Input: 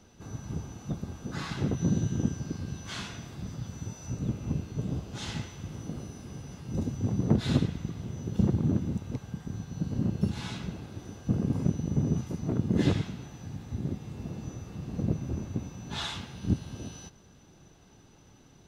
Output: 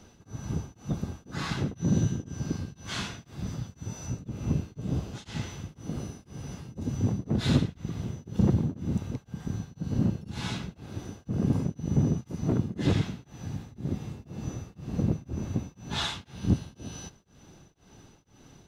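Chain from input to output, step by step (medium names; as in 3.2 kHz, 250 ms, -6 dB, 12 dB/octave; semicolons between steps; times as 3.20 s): in parallel at -3.5 dB: overload inside the chain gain 24 dB; on the sum: tremolo of two beating tones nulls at 2 Hz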